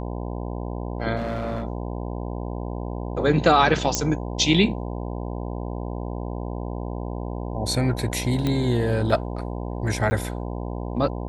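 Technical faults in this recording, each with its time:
buzz 60 Hz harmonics 17 -30 dBFS
1.16–1.64 s: clipped -23 dBFS
3.95 s: pop -5 dBFS
8.47 s: pop -12 dBFS
10.10–10.11 s: dropout 10 ms

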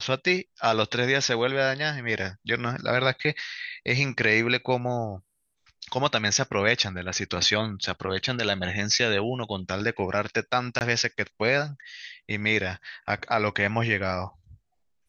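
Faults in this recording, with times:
10.79–10.81 s: dropout 19 ms

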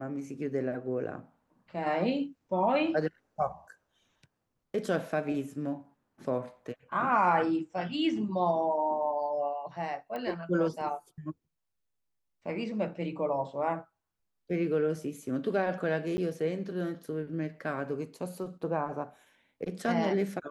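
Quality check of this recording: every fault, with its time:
10.16 s: pop -25 dBFS
16.17–16.18 s: dropout 10 ms

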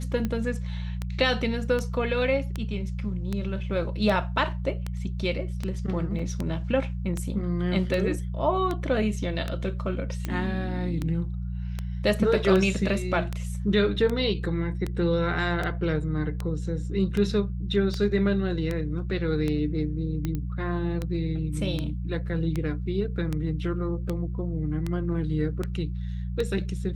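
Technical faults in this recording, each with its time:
hum 60 Hz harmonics 3 -31 dBFS
tick 78 rpm -16 dBFS
6.19 s: dropout 4.6 ms
20.35 s: pop -19 dBFS

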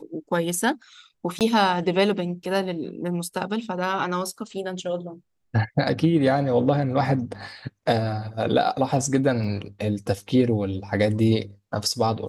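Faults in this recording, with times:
1.39–1.41 s: dropout 18 ms
9.44 s: dropout 3.3 ms

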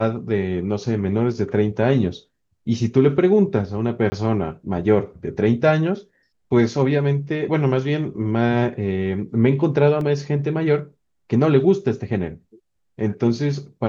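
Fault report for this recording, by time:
4.10–4.12 s: dropout 20 ms
10.01 s: dropout 2.4 ms

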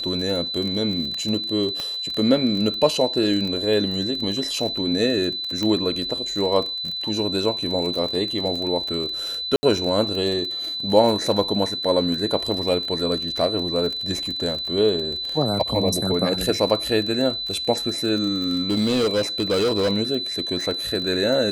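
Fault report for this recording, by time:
crackle 27 per s -26 dBFS
whine 4 kHz -26 dBFS
1.80 s: pop -14 dBFS
5.63 s: pop -12 dBFS
9.56–9.63 s: dropout 70 ms
18.36–19.91 s: clipped -16.5 dBFS

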